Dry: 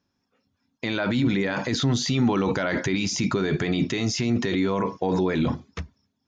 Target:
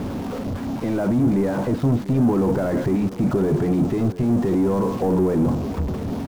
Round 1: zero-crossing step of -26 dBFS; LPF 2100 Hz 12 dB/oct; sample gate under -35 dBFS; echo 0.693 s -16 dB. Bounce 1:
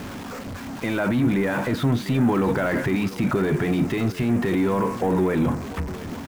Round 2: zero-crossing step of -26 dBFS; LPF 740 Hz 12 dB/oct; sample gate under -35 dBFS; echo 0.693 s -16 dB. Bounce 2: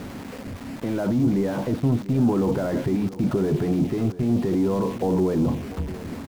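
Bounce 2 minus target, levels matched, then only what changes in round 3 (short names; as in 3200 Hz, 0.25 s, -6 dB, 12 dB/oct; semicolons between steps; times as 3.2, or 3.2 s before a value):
zero-crossing step: distortion -5 dB
change: zero-crossing step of -18.5 dBFS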